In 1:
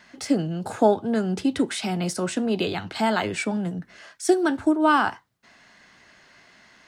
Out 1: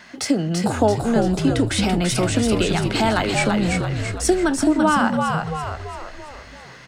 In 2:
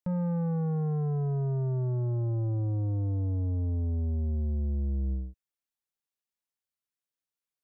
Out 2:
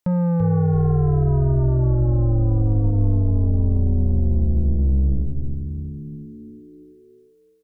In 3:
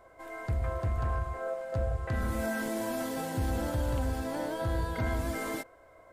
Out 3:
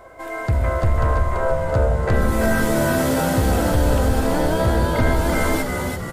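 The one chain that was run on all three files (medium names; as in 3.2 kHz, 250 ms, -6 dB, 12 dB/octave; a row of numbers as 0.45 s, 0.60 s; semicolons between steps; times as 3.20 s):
compression 2:1, threshold -28 dBFS; on a send: frequency-shifting echo 336 ms, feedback 52%, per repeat -73 Hz, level -4 dB; on the sum: normalise loudness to -20 LUFS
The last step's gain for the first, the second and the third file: +8.0 dB, +10.0 dB, +13.0 dB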